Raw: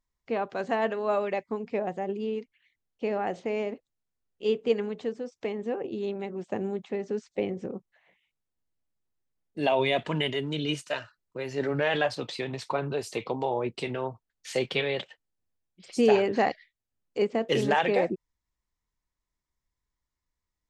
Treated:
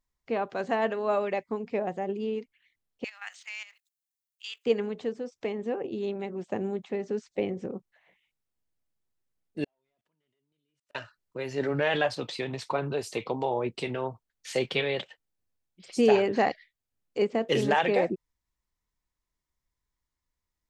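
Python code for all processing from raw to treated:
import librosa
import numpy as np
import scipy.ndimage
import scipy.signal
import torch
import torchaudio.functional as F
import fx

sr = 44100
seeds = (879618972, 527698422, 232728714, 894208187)

y = fx.chain(x, sr, fx.highpass(hz=1300.0, slope=24),
    fx.tilt_eq(slope=4.5),
    fx.level_steps(step_db=13), at=(3.04, 4.66))
y = fx.chain(y, sr, fx.delta_mod(bps=64000, step_db=-43.0),
    fx.level_steps(step_db=21),
    fx.gate_flip(shuts_db=-36.0, range_db=-39), at=(9.64, 10.95))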